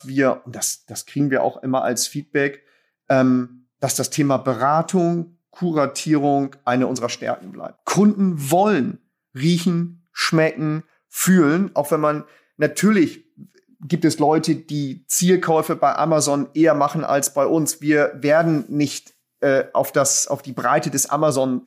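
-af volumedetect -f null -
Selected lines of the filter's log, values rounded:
mean_volume: -19.7 dB
max_volume: -4.4 dB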